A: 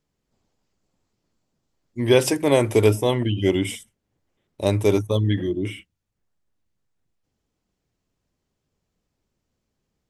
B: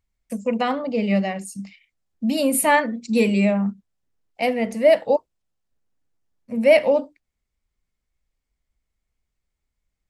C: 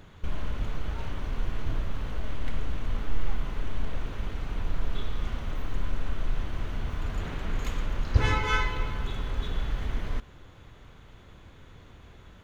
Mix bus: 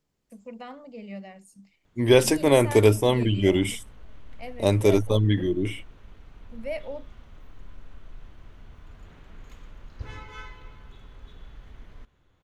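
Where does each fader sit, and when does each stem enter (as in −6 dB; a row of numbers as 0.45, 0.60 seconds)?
−0.5, −18.5, −15.5 decibels; 0.00, 0.00, 1.85 seconds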